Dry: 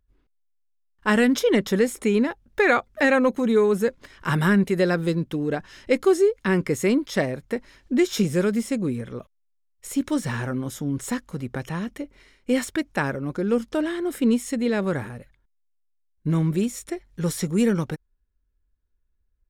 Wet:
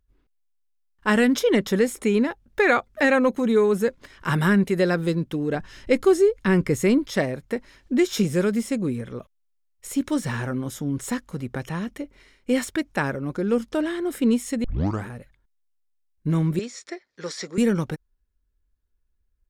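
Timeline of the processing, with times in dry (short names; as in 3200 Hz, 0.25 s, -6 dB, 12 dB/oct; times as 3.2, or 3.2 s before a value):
5.55–7.11 low shelf 120 Hz +10 dB
14.64 tape start 0.41 s
16.59–17.58 speaker cabinet 440–6400 Hz, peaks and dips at 860 Hz -5 dB, 1900 Hz +4 dB, 2900 Hz -5 dB, 4700 Hz +7 dB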